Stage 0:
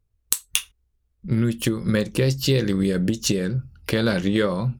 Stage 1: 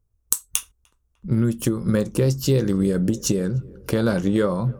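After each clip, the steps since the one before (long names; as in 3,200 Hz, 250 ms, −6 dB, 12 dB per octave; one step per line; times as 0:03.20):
flat-topped bell 2,800 Hz −9 dB
tape delay 301 ms, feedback 79%, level −23.5 dB, low-pass 1,500 Hz
level +1 dB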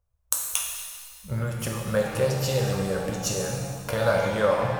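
drawn EQ curve 100 Hz 0 dB, 350 Hz −14 dB, 550 Hz +9 dB, 7,800 Hz +1 dB
reverb with rising layers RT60 1.7 s, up +7 semitones, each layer −8 dB, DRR −0.5 dB
level −6 dB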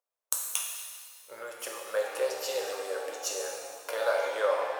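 inverse Chebyshev high-pass filter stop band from 200 Hz, stop band 40 dB
level −4.5 dB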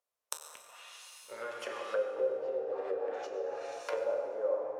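treble cut that deepens with the level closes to 400 Hz, closed at −29 dBFS
on a send at −4 dB: convolution reverb RT60 2.1 s, pre-delay 6 ms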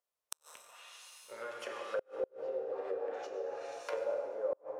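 gate with flip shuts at −22 dBFS, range −34 dB
level −2.5 dB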